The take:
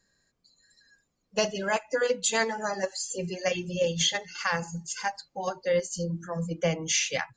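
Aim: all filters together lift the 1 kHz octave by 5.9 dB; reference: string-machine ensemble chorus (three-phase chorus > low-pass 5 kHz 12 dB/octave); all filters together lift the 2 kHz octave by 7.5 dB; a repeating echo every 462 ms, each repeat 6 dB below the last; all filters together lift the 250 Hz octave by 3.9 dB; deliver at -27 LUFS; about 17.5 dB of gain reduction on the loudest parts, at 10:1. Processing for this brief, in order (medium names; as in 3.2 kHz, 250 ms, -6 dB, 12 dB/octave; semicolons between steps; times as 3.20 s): peaking EQ 250 Hz +6.5 dB; peaking EQ 1 kHz +5.5 dB; peaking EQ 2 kHz +7.5 dB; compression 10:1, threshold -35 dBFS; feedback delay 462 ms, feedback 50%, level -6 dB; three-phase chorus; low-pass 5 kHz 12 dB/octave; trim +14 dB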